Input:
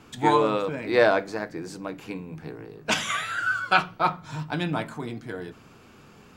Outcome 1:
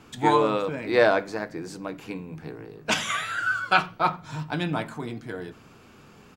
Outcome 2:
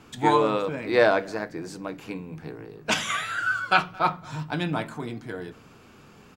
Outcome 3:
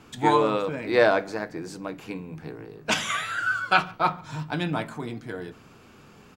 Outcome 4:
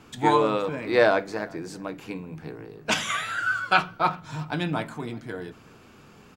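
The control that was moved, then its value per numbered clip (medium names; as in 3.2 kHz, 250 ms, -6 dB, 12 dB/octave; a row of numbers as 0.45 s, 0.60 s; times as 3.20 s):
speakerphone echo, time: 90 ms, 220 ms, 140 ms, 380 ms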